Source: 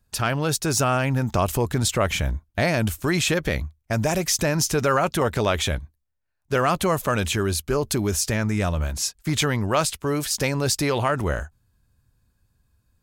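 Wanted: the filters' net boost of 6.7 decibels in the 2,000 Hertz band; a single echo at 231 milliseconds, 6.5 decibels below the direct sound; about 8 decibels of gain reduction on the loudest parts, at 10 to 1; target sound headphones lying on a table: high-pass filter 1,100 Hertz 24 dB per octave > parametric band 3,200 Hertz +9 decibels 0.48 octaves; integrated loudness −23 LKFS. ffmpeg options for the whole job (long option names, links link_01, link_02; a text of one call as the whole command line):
ffmpeg -i in.wav -af "equalizer=frequency=2000:width_type=o:gain=7,acompressor=threshold=-23dB:ratio=10,highpass=frequency=1100:width=0.5412,highpass=frequency=1100:width=1.3066,equalizer=frequency=3200:width_type=o:width=0.48:gain=9,aecho=1:1:231:0.473,volume=4.5dB" out.wav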